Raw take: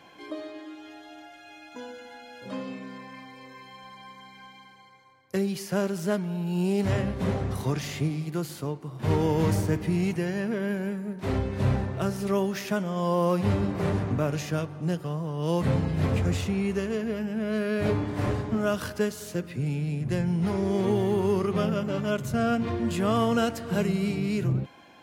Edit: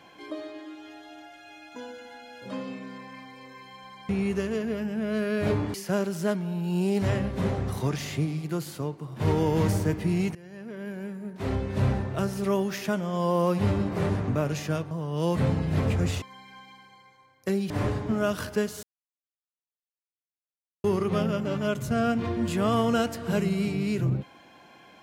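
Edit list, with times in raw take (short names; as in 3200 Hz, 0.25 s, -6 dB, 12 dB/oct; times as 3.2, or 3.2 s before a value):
4.09–5.57 swap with 16.48–18.13
10.18–11.56 fade in, from -23 dB
14.74–15.17 cut
19.26–21.27 mute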